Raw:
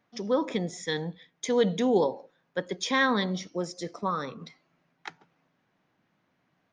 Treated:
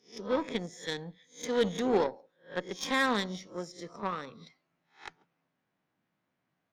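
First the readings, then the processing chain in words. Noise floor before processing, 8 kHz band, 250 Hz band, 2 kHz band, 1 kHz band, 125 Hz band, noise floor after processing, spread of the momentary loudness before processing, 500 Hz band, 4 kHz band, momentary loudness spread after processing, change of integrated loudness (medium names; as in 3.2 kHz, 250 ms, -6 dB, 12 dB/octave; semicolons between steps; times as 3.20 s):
-74 dBFS, -4.0 dB, -5.0 dB, -3.5 dB, -3.5 dB, -7.5 dB, -82 dBFS, 21 LU, -4.0 dB, -3.0 dB, 20 LU, -4.0 dB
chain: reverse spectral sustain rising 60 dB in 0.34 s; Chebyshev shaper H 4 -24 dB, 7 -23 dB, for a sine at -11.5 dBFS; trim -4 dB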